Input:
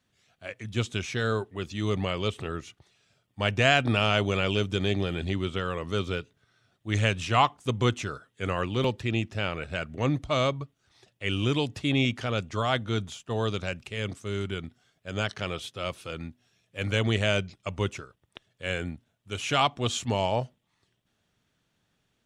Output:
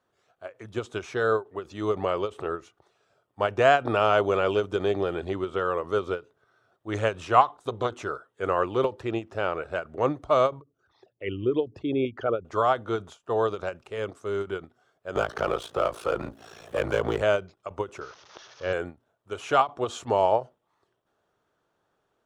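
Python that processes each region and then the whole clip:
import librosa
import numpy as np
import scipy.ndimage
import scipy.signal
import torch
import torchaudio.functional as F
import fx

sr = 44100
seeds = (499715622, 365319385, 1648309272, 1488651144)

y = fx.chain(x, sr, fx.peak_eq(hz=3800.0, db=12.0, octaves=0.27),
    fx.transformer_sat(knee_hz=780.0), at=(7.41, 7.93))
y = fx.chain(y, sr, fx.envelope_sharpen(power=2.0),
    fx.highpass(hz=41.0, slope=12), at=(10.61, 12.45))
y = fx.chain(y, sr, fx.power_curve(exponent=0.7),
    fx.ring_mod(carrier_hz=28.0),
    fx.band_squash(depth_pct=70), at=(15.15, 17.22))
y = fx.chain(y, sr, fx.crossing_spikes(level_db=-28.5),
    fx.steep_lowpass(hz=6300.0, slope=96),
    fx.low_shelf(hz=180.0, db=7.0), at=(18.01, 18.73))
y = fx.band_shelf(y, sr, hz=700.0, db=14.0, octaves=2.5)
y = fx.end_taper(y, sr, db_per_s=290.0)
y = y * librosa.db_to_amplitude(-7.5)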